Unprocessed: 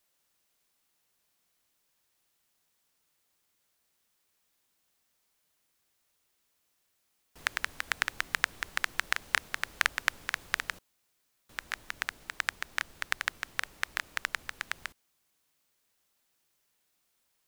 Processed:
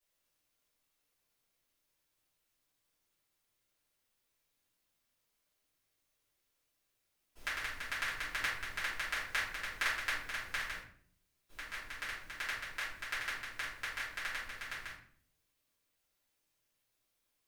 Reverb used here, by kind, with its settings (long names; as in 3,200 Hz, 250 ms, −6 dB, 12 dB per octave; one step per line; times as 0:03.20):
rectangular room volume 72 cubic metres, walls mixed, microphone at 2.9 metres
level −16.5 dB